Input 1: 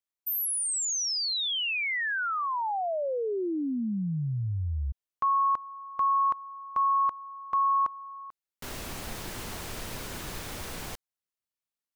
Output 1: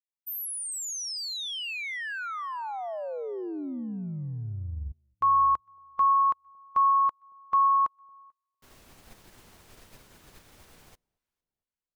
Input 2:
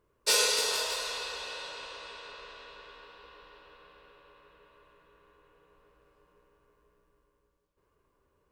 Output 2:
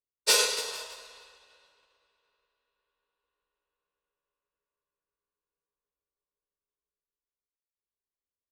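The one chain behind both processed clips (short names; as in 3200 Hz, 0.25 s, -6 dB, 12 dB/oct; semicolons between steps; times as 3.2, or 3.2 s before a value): echo with dull and thin repeats by turns 0.227 s, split 900 Hz, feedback 60%, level -14 dB; upward expander 2.5:1, over -48 dBFS; gain +4 dB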